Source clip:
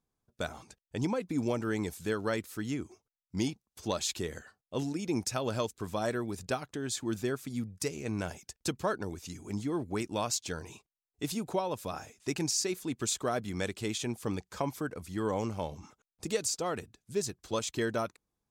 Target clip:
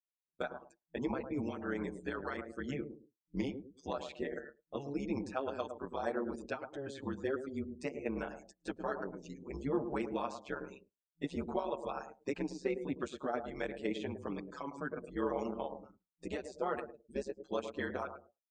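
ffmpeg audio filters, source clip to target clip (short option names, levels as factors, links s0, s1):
-filter_complex "[0:a]asettb=1/sr,asplit=3[s0][s1][s2];[s0]atrim=end=9.764[s3];[s1]atrim=start=9.76:end=10.35,asetpts=PTS-STARTPTS,afade=t=in:d=0.004:c=qsin,afade=t=out:st=0.586:d=0.004:c=qsin,aeval=exprs='val(0)+0.5*0.00668*sgn(val(0))':c=same[s4];[s2]atrim=start=10.346[s5];[s3][s4]acrossfade=d=0.004:c1=hsin:c2=qsin[s6];[s6][s5]acrossfade=d=0.004:c1=qsin:c2=hsin,asplit=2[s7][s8];[s8]adelay=107,lowpass=f=990:p=1,volume=0.398,asplit=2[s9][s10];[s10]adelay=107,lowpass=f=990:p=1,volume=0.28,asplit=2[s11][s12];[s12]adelay=107,lowpass=f=990:p=1,volume=0.28[s13];[s7][s9][s11][s13]amix=inputs=4:normalize=0,afftdn=nr=33:nf=-48,bass=f=250:g=-7,treble=f=4000:g=-10,acrossover=split=2800[s14][s15];[s14]alimiter=level_in=1.41:limit=0.0631:level=0:latency=1:release=472,volume=0.708[s16];[s15]acompressor=threshold=0.001:ratio=10[s17];[s16][s17]amix=inputs=2:normalize=0,afftfilt=real='re*between(b*sr/4096,170,9200)':imag='im*between(b*sr/4096,170,9200)':win_size=4096:overlap=0.75,tremolo=f=140:d=0.824,asplit=2[s18][s19];[s19]adelay=7.2,afreqshift=-0.56[s20];[s18][s20]amix=inputs=2:normalize=1,volume=2.51"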